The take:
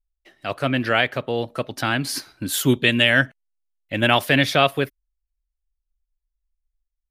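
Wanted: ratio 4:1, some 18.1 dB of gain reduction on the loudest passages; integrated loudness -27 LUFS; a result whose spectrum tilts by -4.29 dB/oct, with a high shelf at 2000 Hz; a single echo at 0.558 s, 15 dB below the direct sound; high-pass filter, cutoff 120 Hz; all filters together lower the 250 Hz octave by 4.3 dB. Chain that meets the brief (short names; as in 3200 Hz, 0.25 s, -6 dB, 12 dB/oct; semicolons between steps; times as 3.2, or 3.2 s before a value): HPF 120 Hz; bell 250 Hz -4.5 dB; high shelf 2000 Hz -4.5 dB; compressor 4:1, threshold -37 dBFS; echo 0.558 s -15 dB; gain +11.5 dB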